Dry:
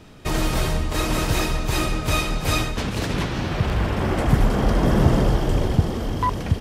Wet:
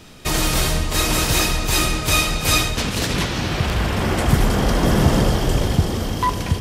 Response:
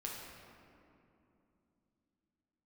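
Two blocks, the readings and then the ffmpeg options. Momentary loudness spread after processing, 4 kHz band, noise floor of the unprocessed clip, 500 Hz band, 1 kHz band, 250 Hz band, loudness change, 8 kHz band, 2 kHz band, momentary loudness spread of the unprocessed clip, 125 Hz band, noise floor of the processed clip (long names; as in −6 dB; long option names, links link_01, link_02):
5 LU, +8.0 dB, −30 dBFS, +1.5 dB, +3.0 dB, +1.5 dB, +3.5 dB, +10.0 dB, +5.5 dB, 6 LU, +1.5 dB, −26 dBFS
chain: -filter_complex "[0:a]highshelf=frequency=2600:gain=10,asplit=2[link_01][link_02];[1:a]atrim=start_sample=2205,asetrate=70560,aresample=44100[link_03];[link_02][link_03]afir=irnorm=-1:irlink=0,volume=-3dB[link_04];[link_01][link_04]amix=inputs=2:normalize=0,volume=-1dB"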